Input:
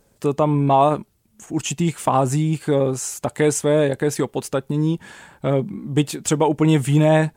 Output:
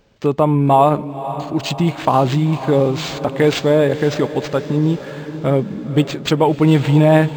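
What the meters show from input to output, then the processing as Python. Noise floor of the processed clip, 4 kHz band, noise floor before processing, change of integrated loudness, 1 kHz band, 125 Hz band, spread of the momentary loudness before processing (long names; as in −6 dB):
−31 dBFS, +6.0 dB, −61 dBFS, +3.5 dB, +3.5 dB, +4.0 dB, 9 LU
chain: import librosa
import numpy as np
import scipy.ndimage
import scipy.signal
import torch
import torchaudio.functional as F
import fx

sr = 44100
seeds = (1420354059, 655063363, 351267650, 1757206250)

y = fx.echo_diffused(x, sr, ms=516, feedback_pct=52, wet_db=-12.5)
y = np.interp(np.arange(len(y)), np.arange(len(y))[::4], y[::4])
y = F.gain(torch.from_numpy(y), 3.5).numpy()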